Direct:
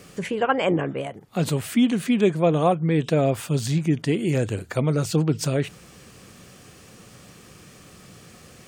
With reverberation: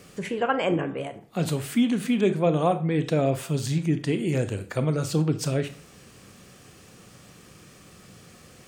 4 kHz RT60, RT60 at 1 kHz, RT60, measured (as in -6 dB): 0.35 s, 0.45 s, 0.45 s